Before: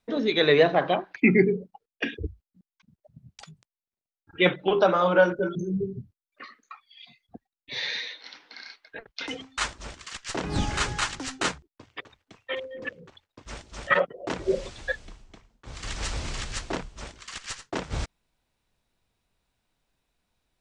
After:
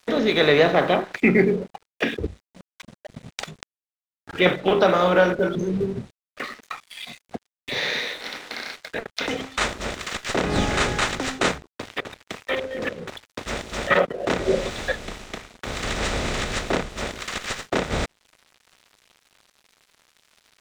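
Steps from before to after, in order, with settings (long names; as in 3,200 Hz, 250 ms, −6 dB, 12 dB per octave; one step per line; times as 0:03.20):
compressor on every frequency bin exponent 0.6
dead-zone distortion −45.5 dBFS
one half of a high-frequency compander encoder only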